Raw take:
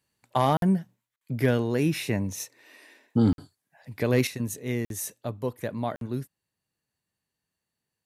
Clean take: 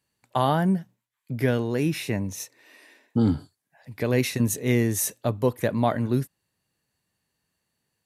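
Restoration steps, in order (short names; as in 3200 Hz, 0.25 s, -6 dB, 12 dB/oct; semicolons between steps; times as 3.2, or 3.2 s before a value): clip repair -11.5 dBFS; interpolate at 0.57/1.16/3.33/4.85/5.96, 52 ms; gain correction +7.5 dB, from 4.27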